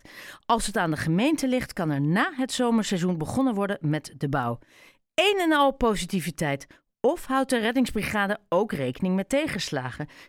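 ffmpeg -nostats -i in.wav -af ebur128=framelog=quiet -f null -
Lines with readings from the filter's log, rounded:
Integrated loudness:
  I:         -25.5 LUFS
  Threshold: -35.7 LUFS
Loudness range:
  LRA:         1.5 LU
  Threshold: -45.6 LUFS
  LRA low:   -26.3 LUFS
  LRA high:  -24.8 LUFS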